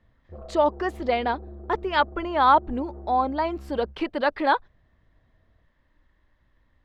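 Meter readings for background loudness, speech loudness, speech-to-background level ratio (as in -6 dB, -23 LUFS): -43.0 LUFS, -24.5 LUFS, 18.5 dB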